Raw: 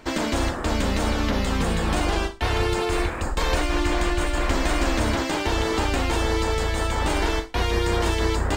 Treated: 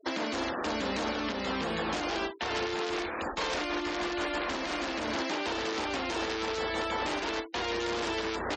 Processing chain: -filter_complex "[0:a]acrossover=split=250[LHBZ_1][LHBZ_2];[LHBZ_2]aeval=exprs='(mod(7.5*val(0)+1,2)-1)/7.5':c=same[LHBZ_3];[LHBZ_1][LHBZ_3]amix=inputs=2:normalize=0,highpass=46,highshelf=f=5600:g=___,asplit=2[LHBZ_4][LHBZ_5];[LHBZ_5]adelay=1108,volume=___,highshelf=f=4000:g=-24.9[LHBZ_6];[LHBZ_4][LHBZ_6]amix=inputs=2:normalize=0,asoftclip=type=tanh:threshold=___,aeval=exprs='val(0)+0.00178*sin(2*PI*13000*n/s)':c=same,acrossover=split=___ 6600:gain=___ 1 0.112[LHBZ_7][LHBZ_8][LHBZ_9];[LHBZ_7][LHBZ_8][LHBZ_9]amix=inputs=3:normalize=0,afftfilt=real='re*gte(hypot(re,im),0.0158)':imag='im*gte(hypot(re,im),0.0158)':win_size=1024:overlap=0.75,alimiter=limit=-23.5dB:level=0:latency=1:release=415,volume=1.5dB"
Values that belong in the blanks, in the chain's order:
3, -29dB, -12dB, 210, 0.126